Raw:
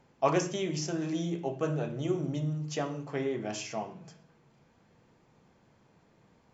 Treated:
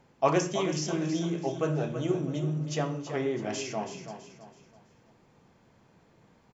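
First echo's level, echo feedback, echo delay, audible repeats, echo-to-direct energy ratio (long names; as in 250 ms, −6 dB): −9.5 dB, 36%, 328 ms, 3, −9.0 dB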